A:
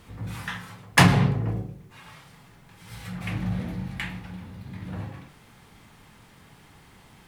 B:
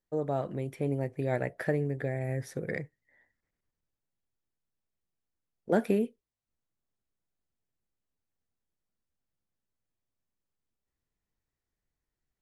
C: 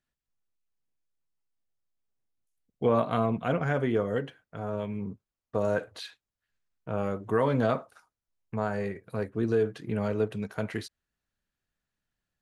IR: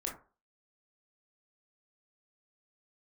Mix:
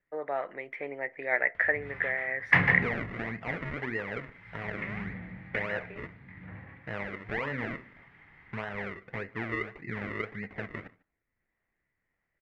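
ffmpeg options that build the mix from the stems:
-filter_complex "[0:a]acompressor=mode=upward:threshold=-43dB:ratio=2.5,adelay=1550,volume=-13dB,asplit=2[link_01][link_02];[link_02]volume=-7dB[link_03];[1:a]highpass=620,volume=1dB,asplit=2[link_04][link_05];[link_05]volume=-19.5dB[link_06];[2:a]acompressor=threshold=-38dB:ratio=2.5,acrusher=samples=38:mix=1:aa=0.000001:lfo=1:lforange=38:lforate=1.7,volume=-1.5dB,asplit=4[link_07][link_08][link_09][link_10];[link_08]volume=-14.5dB[link_11];[link_09]volume=-23.5dB[link_12];[link_10]apad=whole_len=547333[link_13];[link_04][link_13]sidechaincompress=threshold=-54dB:ratio=8:attack=16:release=642[link_14];[3:a]atrim=start_sample=2205[link_15];[link_06][link_11]amix=inputs=2:normalize=0[link_16];[link_16][link_15]afir=irnorm=-1:irlink=0[link_17];[link_03][link_12]amix=inputs=2:normalize=0,aecho=0:1:148:1[link_18];[link_01][link_14][link_07][link_17][link_18]amix=inputs=5:normalize=0,lowpass=frequency=2000:width_type=q:width=6.4"

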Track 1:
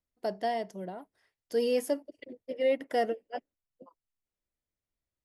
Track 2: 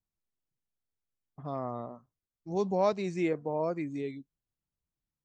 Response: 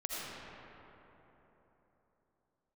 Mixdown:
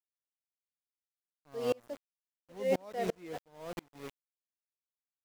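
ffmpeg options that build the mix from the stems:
-filter_complex "[0:a]highpass=290,highshelf=frequency=4100:gain=-10.5,volume=2dB,asplit=2[link_01][link_02];[link_02]volume=-19.5dB[link_03];[1:a]volume=0dB,asplit=2[link_04][link_05];[link_05]apad=whole_len=231265[link_06];[link_01][link_06]sidechaingate=range=-33dB:threshold=-43dB:ratio=16:detection=peak[link_07];[2:a]atrim=start_sample=2205[link_08];[link_03][link_08]afir=irnorm=-1:irlink=0[link_09];[link_07][link_04][link_09]amix=inputs=3:normalize=0,aeval=exprs='val(0)*gte(abs(val(0)),0.0211)':channel_layout=same,aeval=exprs='val(0)*pow(10,-34*if(lt(mod(-2.9*n/s,1),2*abs(-2.9)/1000),1-mod(-2.9*n/s,1)/(2*abs(-2.9)/1000),(mod(-2.9*n/s,1)-2*abs(-2.9)/1000)/(1-2*abs(-2.9)/1000))/20)':channel_layout=same"

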